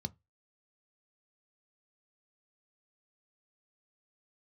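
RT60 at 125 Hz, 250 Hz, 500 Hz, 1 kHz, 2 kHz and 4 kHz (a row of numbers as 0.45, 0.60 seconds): 0.25, 0.20, 0.20, 0.20, 0.20, 0.15 seconds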